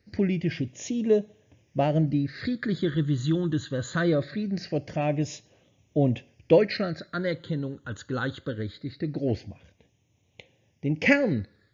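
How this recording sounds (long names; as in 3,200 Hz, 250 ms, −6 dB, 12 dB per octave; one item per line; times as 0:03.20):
phaser sweep stages 8, 0.22 Hz, lowest notch 690–1,400 Hz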